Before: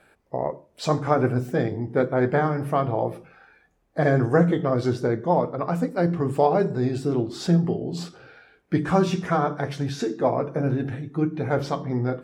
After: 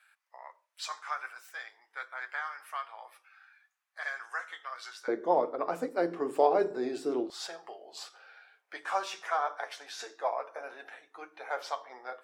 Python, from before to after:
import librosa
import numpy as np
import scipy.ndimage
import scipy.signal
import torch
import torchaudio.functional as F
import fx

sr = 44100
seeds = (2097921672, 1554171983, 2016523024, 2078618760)

y = fx.highpass(x, sr, hz=fx.steps((0.0, 1200.0), (5.08, 310.0), (7.3, 690.0)), slope=24)
y = y * librosa.db_to_amplitude(-4.5)